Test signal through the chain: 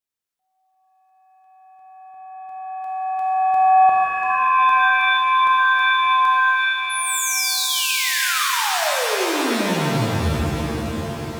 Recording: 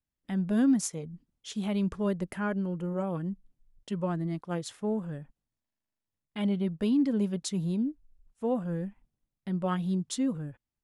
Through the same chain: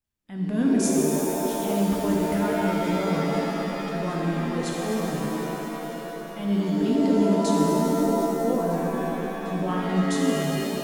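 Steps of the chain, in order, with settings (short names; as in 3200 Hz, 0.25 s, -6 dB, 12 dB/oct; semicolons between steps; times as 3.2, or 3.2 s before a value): transient shaper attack -8 dB, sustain +2 dB; swung echo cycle 1.255 s, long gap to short 1.5:1, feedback 56%, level -17.5 dB; shimmer reverb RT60 3.3 s, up +7 st, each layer -2 dB, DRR -2.5 dB; gain +1.5 dB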